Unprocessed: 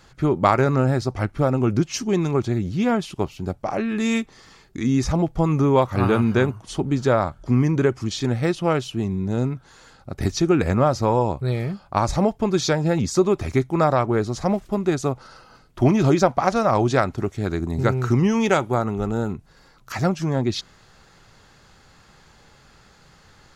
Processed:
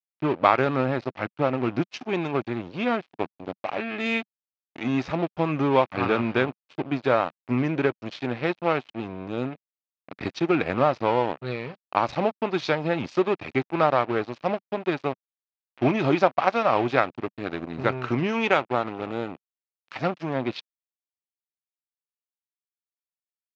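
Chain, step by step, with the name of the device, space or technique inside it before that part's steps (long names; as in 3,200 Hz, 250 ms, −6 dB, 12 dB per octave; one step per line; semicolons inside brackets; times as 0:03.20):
blown loudspeaker (dead-zone distortion −29.5 dBFS; loudspeaker in its box 190–4,200 Hz, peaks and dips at 200 Hz −6 dB, 390 Hz −3 dB, 2,500 Hz +6 dB)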